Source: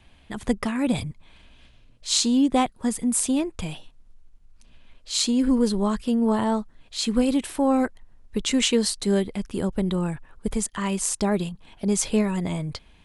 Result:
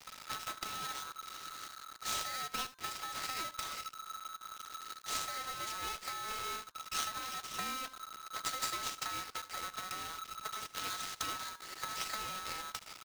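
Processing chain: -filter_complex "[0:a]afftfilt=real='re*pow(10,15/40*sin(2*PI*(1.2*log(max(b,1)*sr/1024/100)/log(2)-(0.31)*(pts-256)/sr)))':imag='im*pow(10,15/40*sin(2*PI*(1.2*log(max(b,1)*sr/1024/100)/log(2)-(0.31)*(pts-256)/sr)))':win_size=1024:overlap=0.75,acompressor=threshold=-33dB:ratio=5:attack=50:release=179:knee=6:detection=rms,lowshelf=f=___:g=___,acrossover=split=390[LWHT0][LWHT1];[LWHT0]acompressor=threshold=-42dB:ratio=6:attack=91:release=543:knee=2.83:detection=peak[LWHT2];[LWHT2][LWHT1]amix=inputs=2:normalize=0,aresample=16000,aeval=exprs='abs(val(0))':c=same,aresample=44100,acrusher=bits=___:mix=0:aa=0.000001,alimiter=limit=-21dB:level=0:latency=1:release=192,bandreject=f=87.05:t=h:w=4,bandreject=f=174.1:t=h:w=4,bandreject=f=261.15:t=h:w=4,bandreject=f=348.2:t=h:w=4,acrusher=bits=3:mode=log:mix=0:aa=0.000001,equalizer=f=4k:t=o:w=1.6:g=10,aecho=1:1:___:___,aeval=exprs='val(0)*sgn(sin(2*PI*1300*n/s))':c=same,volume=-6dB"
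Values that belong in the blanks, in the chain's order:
79, 7.5, 7, 76, 0.158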